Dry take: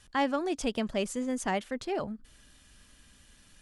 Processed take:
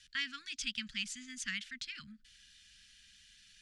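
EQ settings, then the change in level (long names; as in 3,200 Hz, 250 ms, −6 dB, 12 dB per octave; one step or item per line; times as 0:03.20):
inverse Chebyshev band-stop filter 390–880 Hz, stop band 50 dB
Chebyshev low-pass filter 4,700 Hz, order 2
tilt shelving filter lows −9 dB, about 1,300 Hz
−3.5 dB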